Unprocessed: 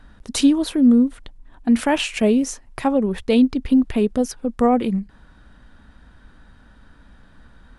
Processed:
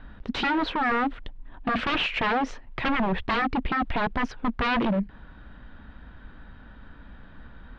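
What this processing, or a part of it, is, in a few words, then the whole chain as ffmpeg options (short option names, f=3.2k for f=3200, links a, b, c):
synthesiser wavefolder: -af "aeval=exprs='0.0841*(abs(mod(val(0)/0.0841+3,4)-2)-1)':c=same,lowpass=f=3.5k:w=0.5412,lowpass=f=3.5k:w=1.3066,volume=2.5dB"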